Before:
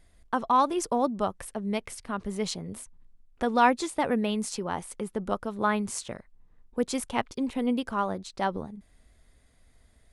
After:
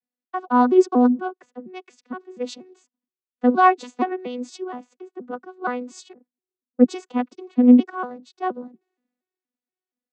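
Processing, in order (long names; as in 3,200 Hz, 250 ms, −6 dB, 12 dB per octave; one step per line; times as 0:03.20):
vocoder with an arpeggio as carrier bare fifth, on B3, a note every 236 ms
0:06.13–0:06.92: low-pass that shuts in the quiet parts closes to 400 Hz, open at −25 dBFS
multiband upward and downward expander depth 70%
level +5.5 dB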